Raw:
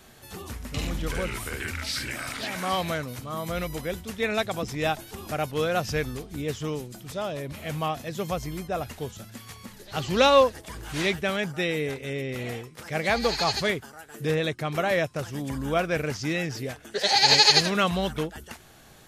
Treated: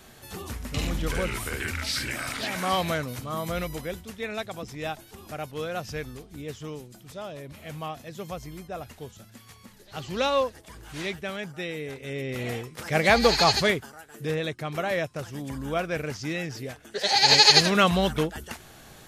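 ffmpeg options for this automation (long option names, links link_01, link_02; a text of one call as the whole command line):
ffmpeg -i in.wav -af "volume=19.5dB,afade=type=out:start_time=3.34:duration=0.9:silence=0.398107,afade=type=in:start_time=11.86:duration=1.09:silence=0.266073,afade=type=out:start_time=13.45:duration=0.64:silence=0.398107,afade=type=in:start_time=16.92:duration=0.88:silence=0.473151" out.wav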